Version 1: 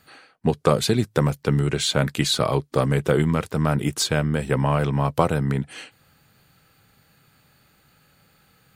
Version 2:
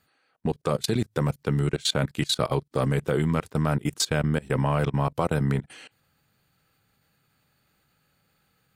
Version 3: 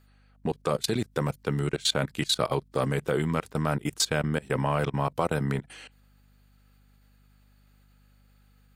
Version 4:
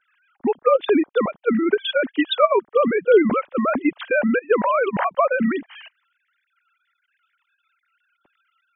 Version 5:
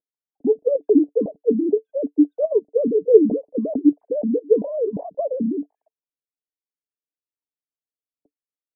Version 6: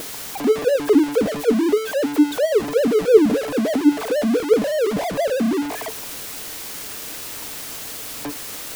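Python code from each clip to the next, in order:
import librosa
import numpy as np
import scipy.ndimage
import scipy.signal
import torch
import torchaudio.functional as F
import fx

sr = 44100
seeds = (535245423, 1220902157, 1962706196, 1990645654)

y1 = fx.level_steps(x, sr, step_db=23)
y2 = fx.low_shelf(y1, sr, hz=220.0, db=-6.5)
y2 = fx.add_hum(y2, sr, base_hz=50, snr_db=30)
y3 = fx.sine_speech(y2, sr)
y3 = F.gain(torch.from_numpy(y3), 8.5).numpy()
y4 = scipy.signal.sosfilt(scipy.signal.ellip(4, 1.0, 50, 670.0, 'lowpass', fs=sr, output='sos'), y3)
y4 = fx.small_body(y4, sr, hz=(290.0, 440.0), ring_ms=85, db=12)
y4 = F.gain(torch.from_numpy(y4), -4.5).numpy()
y5 = y4 + 0.5 * 10.0 ** (-19.5 / 20.0) * np.sign(y4)
y5 = F.gain(torch.from_numpy(y5), -1.0).numpy()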